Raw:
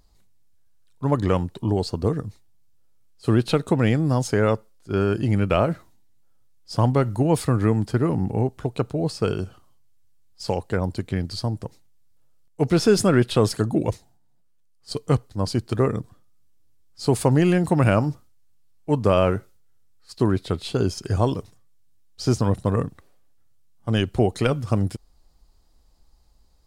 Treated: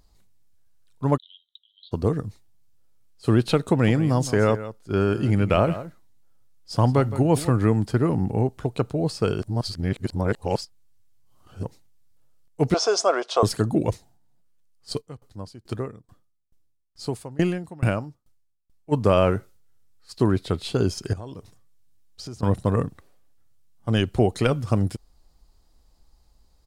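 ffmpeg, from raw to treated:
-filter_complex "[0:a]asplit=3[a][b][c];[a]afade=t=out:st=1.16:d=0.02[d];[b]asuperpass=centerf=3500:order=8:qfactor=4.3,afade=t=in:st=1.16:d=0.02,afade=t=out:st=1.91:d=0.02[e];[c]afade=t=in:st=1.91:d=0.02[f];[d][e][f]amix=inputs=3:normalize=0,asplit=3[g][h][i];[g]afade=t=out:st=3.77:d=0.02[j];[h]aecho=1:1:165:0.2,afade=t=in:st=3.77:d=0.02,afade=t=out:st=7.5:d=0.02[k];[i]afade=t=in:st=7.5:d=0.02[l];[j][k][l]amix=inputs=3:normalize=0,asettb=1/sr,asplit=3[m][n][o];[m]atrim=end=12.744[p];[n]atrim=start=12.74:end=13.43,asetpts=PTS-STARTPTS,afade=t=in:d=0.004:c=qsin,afade=t=out:st=0.686:d=0.004:c=qsin,highpass=f=470:w=0.5412,highpass=f=470:w=1.3066,equalizer=f=680:t=q:w=4:g=10,equalizer=f=1.1k:t=q:w=4:g=7,equalizer=f=1.8k:t=q:w=4:g=-8,equalizer=f=2.6k:t=q:w=4:g=-5,equalizer=f=3.9k:t=q:w=4:g=-3,equalizer=f=5.9k:t=q:w=4:g=8,lowpass=f=7.1k:w=0.5412,lowpass=f=7.1k:w=1.3066[q];[o]atrim=start=13.426[r];[p][q]acrossfade=d=0.004:c1=hsin:c2=qsin[s];[s][r]acrossfade=d=0.004:c1=qsin:c2=hsin,asplit=3[t][u][v];[t]afade=t=out:st=15:d=0.02[w];[u]aeval=exprs='val(0)*pow(10,-26*if(lt(mod(2.3*n/s,1),2*abs(2.3)/1000),1-mod(2.3*n/s,1)/(2*abs(2.3)/1000),(mod(2.3*n/s,1)-2*abs(2.3)/1000)/(1-2*abs(2.3)/1000))/20)':c=same,afade=t=in:st=15:d=0.02,afade=t=out:st=18.91:d=0.02[x];[v]afade=t=in:st=18.91:d=0.02[y];[w][x][y]amix=inputs=3:normalize=0,asettb=1/sr,asplit=3[z][aa][ab];[z]atrim=end=21.134[ac];[aa]atrim=start=21.13:end=22.43,asetpts=PTS-STARTPTS,afade=t=in:d=0.004:c=qsin,afade=t=out:st=1.296:d=0.004:c=qsin,acompressor=threshold=-36dB:ratio=4:attack=3.2:release=140:knee=1:detection=peak[ad];[ab]atrim=start=22.426[ae];[ac][ad]acrossfade=d=0.004:c1=hsin:c2=qsin[af];[af][ae]acrossfade=d=0.004:c1=qsin:c2=hsin,asplit=3[ag][ah][ai];[ag]atrim=end=9.422[aj];[ah]atrim=start=9.418:end=11.632,asetpts=PTS-STARTPTS,areverse[ak];[ai]atrim=start=11.628[al];[aj][ak]acrossfade=d=0.004:c1=hsin:c2=hsin[am];[am][al]acrossfade=d=0.004:c1=hsin:c2=hsin"

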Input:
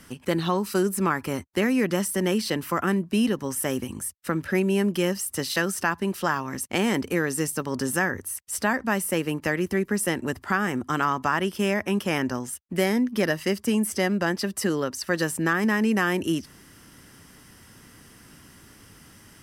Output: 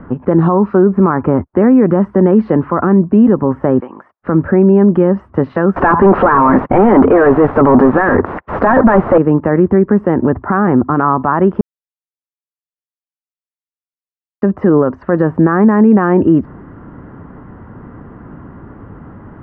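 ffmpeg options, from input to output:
-filter_complex "[0:a]asplit=3[a][b][c];[a]afade=t=out:st=3.79:d=0.02[d];[b]highpass=680,lowpass=6.4k,afade=t=in:st=3.79:d=0.02,afade=t=out:st=4.2:d=0.02[e];[c]afade=t=in:st=4.2:d=0.02[f];[d][e][f]amix=inputs=3:normalize=0,asettb=1/sr,asplit=3[g][h][i];[g]atrim=end=5.764[j];[h]atrim=start=5.76:end=9.18,asetpts=PTS-STARTPTS,afade=t=in:d=0.004:c=qsin,afade=t=out:st=3.416:d=0.004:c=qsin,asplit=2[k][l];[l]highpass=f=720:p=1,volume=34dB,asoftclip=type=tanh:threshold=-8.5dB[m];[k][m]amix=inputs=2:normalize=0,lowpass=f=2.2k:p=1,volume=-6dB[n];[i]atrim=start=9.176[o];[j][n]acrossfade=d=0.004:c1=hsin:c2=qsin[p];[p][o]acrossfade=d=0.004:c1=qsin:c2=hsin,asplit=3[q][r][s];[q]atrim=end=11.61,asetpts=PTS-STARTPTS,afade=t=out:st=11.606:d=0.004:c=hsin[t];[r]atrim=start=11.61:end=14.42,asetpts=PTS-STARTPTS,volume=0[u];[s]atrim=start=14.42,asetpts=PTS-STARTPTS,afade=t=in:d=0.004:c=hsin[v];[t][u][v]concat=n=3:v=0:a=1,lowpass=f=1.2k:w=0.5412,lowpass=f=1.2k:w=1.3066,alimiter=level_in=20dB:limit=-1dB:release=50:level=0:latency=1,volume=-1dB"

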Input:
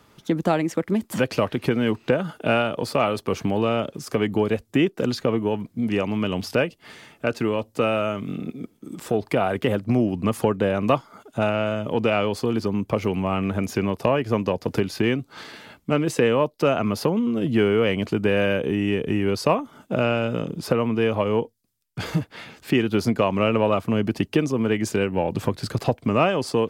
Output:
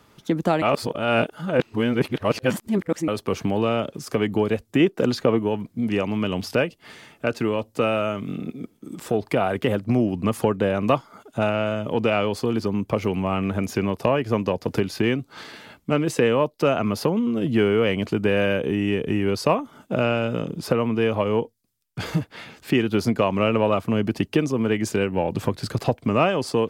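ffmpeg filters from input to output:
-filter_complex "[0:a]asettb=1/sr,asplit=3[a][b][c];[a]atrim=end=4.804[d];[b]atrim=start=4.8:end=5.39,asetpts=PTS-STARTPTS,afade=t=in:d=0.004:c=qsin,afade=t=out:st=0.586:d=0.004:c=qsin,equalizer=f=670:w=0.36:g=3.5[e];[c]atrim=start=5.386[f];[d][e]acrossfade=d=0.004:c1=hsin:c2=qsin[g];[g][f]acrossfade=d=0.004:c1=qsin:c2=hsin,asplit=3[h][i][j];[h]atrim=end=0.622[k];[i]atrim=start=0.618:end=3.082,asetpts=PTS-STARTPTS,areverse[l];[j]atrim=start=3.078[m];[k][l]acrossfade=d=0.004:c1=hsin:c2=hsin[n];[n][m]acrossfade=d=0.004:c1=hsin:c2=hsin"

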